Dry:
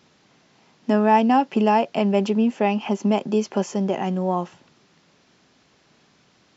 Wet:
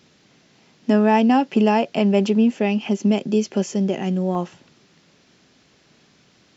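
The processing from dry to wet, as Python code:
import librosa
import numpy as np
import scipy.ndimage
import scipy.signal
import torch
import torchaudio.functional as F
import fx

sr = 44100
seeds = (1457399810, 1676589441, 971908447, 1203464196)

y = fx.peak_eq(x, sr, hz=960.0, db=fx.steps((0.0, -6.5), (2.58, -12.5), (4.35, -5.0)), octaves=1.2)
y = y * 10.0 ** (3.5 / 20.0)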